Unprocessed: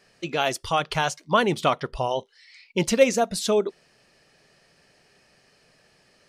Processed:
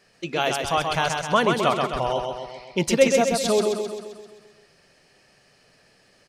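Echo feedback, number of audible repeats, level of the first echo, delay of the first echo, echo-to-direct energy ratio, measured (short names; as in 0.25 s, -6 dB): 56%, 7, -4.5 dB, 0.131 s, -3.0 dB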